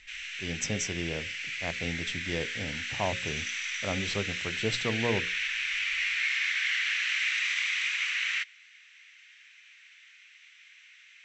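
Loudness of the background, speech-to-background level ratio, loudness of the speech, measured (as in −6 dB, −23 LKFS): −30.0 LKFS, −5.0 dB, −35.0 LKFS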